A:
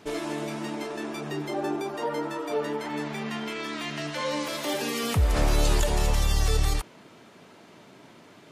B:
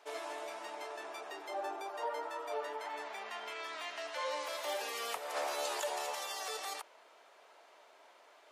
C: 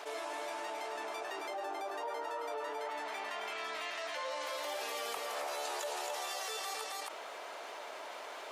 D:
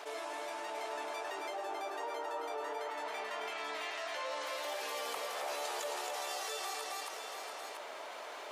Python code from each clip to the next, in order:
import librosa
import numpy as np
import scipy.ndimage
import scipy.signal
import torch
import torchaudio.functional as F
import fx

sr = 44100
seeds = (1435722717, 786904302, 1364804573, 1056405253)

y1 = scipy.signal.sosfilt(scipy.signal.butter(4, 600.0, 'highpass', fs=sr, output='sos'), x)
y1 = fx.tilt_shelf(y1, sr, db=4.5, hz=890.0)
y1 = y1 * 10.0 ** (-5.0 / 20.0)
y2 = y1 + 10.0 ** (-4.5 / 20.0) * np.pad(y1, (int(270 * sr / 1000.0), 0))[:len(y1)]
y2 = fx.env_flatten(y2, sr, amount_pct=70)
y2 = y2 * 10.0 ** (-5.5 / 20.0)
y3 = y2 + 10.0 ** (-6.5 / 20.0) * np.pad(y2, (int(688 * sr / 1000.0), 0))[:len(y2)]
y3 = y3 * 10.0 ** (-1.0 / 20.0)